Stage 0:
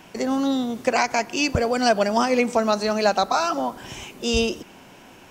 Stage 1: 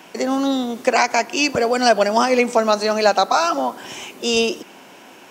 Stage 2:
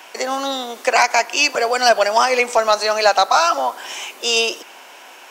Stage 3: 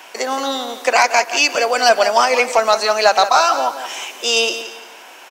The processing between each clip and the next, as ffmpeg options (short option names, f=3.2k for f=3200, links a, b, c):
-af "highpass=250,volume=4.5dB"
-af "highpass=650,aeval=exprs='0.944*sin(PI/2*1.41*val(0)/0.944)':c=same,volume=-2.5dB"
-af "aecho=1:1:173|346|519:0.266|0.0851|0.0272,volume=1dB"